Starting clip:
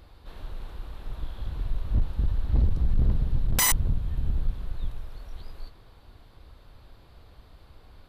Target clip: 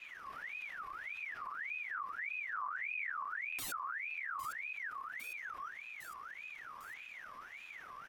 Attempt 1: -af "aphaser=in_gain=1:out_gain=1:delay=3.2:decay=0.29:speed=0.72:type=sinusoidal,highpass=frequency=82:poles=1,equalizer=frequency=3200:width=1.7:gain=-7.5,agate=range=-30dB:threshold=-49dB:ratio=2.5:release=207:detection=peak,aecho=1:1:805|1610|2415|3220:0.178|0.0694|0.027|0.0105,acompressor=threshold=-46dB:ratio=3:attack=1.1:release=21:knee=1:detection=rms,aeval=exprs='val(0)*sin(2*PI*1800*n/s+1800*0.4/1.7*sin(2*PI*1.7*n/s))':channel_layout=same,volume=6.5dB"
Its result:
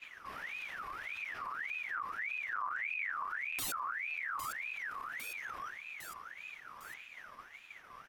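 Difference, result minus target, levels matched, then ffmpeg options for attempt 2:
downward compressor: peak gain reduction −6 dB; 125 Hz band +3.0 dB
-af "aphaser=in_gain=1:out_gain=1:delay=3.2:decay=0.29:speed=0.72:type=sinusoidal,highpass=frequency=24:poles=1,equalizer=frequency=3200:width=1.7:gain=-7.5,agate=range=-30dB:threshold=-49dB:ratio=2.5:release=207:detection=peak,aecho=1:1:805|1610|2415|3220:0.178|0.0694|0.027|0.0105,acompressor=threshold=-52.5dB:ratio=3:attack=1.1:release=21:knee=1:detection=rms,aeval=exprs='val(0)*sin(2*PI*1800*n/s+1800*0.4/1.7*sin(2*PI*1.7*n/s))':channel_layout=same,volume=6.5dB"

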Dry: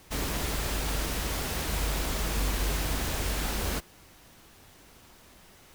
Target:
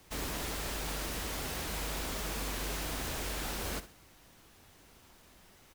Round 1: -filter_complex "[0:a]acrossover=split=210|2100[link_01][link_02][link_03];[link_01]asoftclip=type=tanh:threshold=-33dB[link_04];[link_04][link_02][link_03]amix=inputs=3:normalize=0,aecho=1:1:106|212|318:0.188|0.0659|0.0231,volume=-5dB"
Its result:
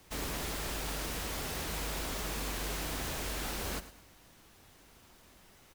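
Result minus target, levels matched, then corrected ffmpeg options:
echo 41 ms late
-filter_complex "[0:a]acrossover=split=210|2100[link_01][link_02][link_03];[link_01]asoftclip=type=tanh:threshold=-33dB[link_04];[link_04][link_02][link_03]amix=inputs=3:normalize=0,aecho=1:1:65|130|195:0.188|0.0659|0.0231,volume=-5dB"

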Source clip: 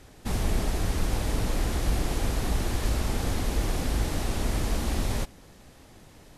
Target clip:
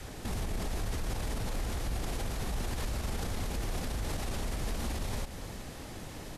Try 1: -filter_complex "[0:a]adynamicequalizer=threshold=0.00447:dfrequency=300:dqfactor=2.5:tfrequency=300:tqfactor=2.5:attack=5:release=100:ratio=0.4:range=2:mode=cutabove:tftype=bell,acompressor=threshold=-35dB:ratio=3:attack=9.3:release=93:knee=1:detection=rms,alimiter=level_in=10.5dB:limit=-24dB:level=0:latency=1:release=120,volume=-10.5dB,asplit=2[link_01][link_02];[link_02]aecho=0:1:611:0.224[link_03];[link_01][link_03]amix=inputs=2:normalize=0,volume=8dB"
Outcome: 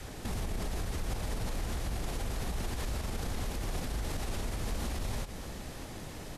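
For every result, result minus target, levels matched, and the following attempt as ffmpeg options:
echo 243 ms late; downward compressor: peak gain reduction +5.5 dB
-filter_complex "[0:a]adynamicequalizer=threshold=0.00447:dfrequency=300:dqfactor=2.5:tfrequency=300:tqfactor=2.5:attack=5:release=100:ratio=0.4:range=2:mode=cutabove:tftype=bell,acompressor=threshold=-35dB:ratio=3:attack=9.3:release=93:knee=1:detection=rms,alimiter=level_in=10.5dB:limit=-24dB:level=0:latency=1:release=120,volume=-10.5dB,asplit=2[link_01][link_02];[link_02]aecho=0:1:368:0.224[link_03];[link_01][link_03]amix=inputs=2:normalize=0,volume=8dB"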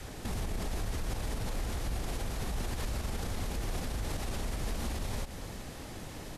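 downward compressor: peak gain reduction +5.5 dB
-filter_complex "[0:a]adynamicequalizer=threshold=0.00447:dfrequency=300:dqfactor=2.5:tfrequency=300:tqfactor=2.5:attack=5:release=100:ratio=0.4:range=2:mode=cutabove:tftype=bell,acompressor=threshold=-26.5dB:ratio=3:attack=9.3:release=93:knee=1:detection=rms,alimiter=level_in=10.5dB:limit=-24dB:level=0:latency=1:release=120,volume=-10.5dB,asplit=2[link_01][link_02];[link_02]aecho=0:1:368:0.224[link_03];[link_01][link_03]amix=inputs=2:normalize=0,volume=8dB"

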